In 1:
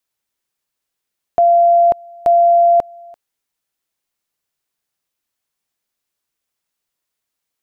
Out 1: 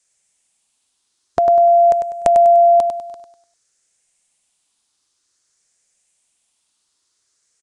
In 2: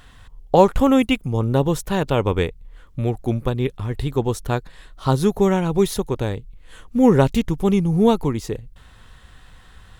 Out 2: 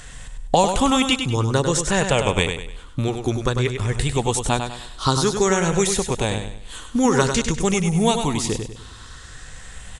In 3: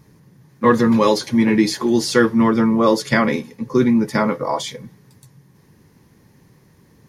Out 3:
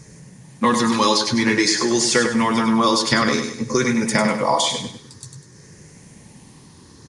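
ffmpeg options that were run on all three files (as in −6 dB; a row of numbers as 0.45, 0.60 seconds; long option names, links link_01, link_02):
-filter_complex "[0:a]afftfilt=real='re*pow(10,6/40*sin(2*PI*(0.53*log(max(b,1)*sr/1024/100)/log(2)-(0.52)*(pts-256)/sr)))':imag='im*pow(10,6/40*sin(2*PI*(0.53*log(max(b,1)*sr/1024/100)/log(2)-(0.52)*(pts-256)/sr)))':win_size=1024:overlap=0.75,equalizer=frequency=7600:width_type=o:width=1.5:gain=12.5,acrossover=split=790|3400[link_01][link_02][link_03];[link_01]acompressor=threshold=-25dB:ratio=4[link_04];[link_02]acompressor=threshold=-25dB:ratio=4[link_05];[link_03]acompressor=threshold=-29dB:ratio=4[link_06];[link_04][link_05][link_06]amix=inputs=3:normalize=0,aecho=1:1:99|198|297|396:0.447|0.161|0.0579|0.0208,aresample=22050,aresample=44100,volume=5dB"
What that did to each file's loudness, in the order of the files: −0.5, −0.5, −1.0 LU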